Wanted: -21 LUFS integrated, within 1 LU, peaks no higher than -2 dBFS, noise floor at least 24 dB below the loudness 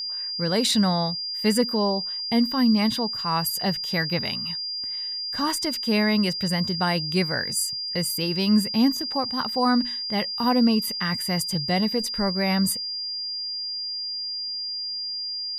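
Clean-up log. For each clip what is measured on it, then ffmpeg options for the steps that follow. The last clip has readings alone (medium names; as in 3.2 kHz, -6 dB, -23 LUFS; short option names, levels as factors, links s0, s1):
steady tone 4.8 kHz; tone level -28 dBFS; loudness -24.0 LUFS; peak level -10.0 dBFS; loudness target -21.0 LUFS
-> -af "bandreject=f=4800:w=30"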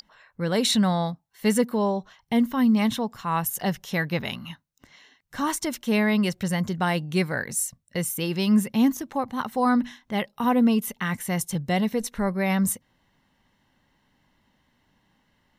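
steady tone not found; loudness -25.0 LUFS; peak level -10.5 dBFS; loudness target -21.0 LUFS
-> -af "volume=1.58"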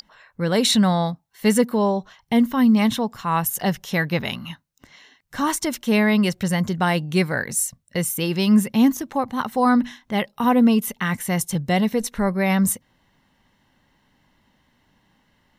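loudness -21.0 LUFS; peak level -6.5 dBFS; noise floor -65 dBFS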